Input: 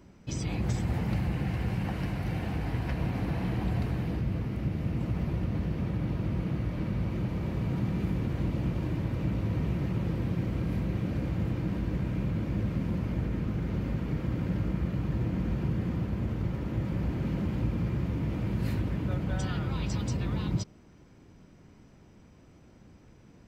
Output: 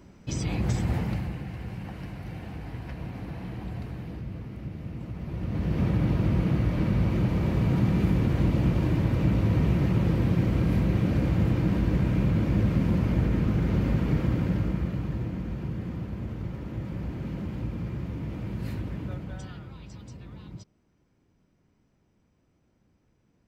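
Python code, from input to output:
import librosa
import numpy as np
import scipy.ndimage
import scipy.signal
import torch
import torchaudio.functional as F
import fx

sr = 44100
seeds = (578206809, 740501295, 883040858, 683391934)

y = fx.gain(x, sr, db=fx.line((0.95, 3.0), (1.46, -6.0), (5.19, -6.0), (5.81, 6.5), (14.17, 6.5), (15.45, -3.0), (19.03, -3.0), (19.8, -13.0)))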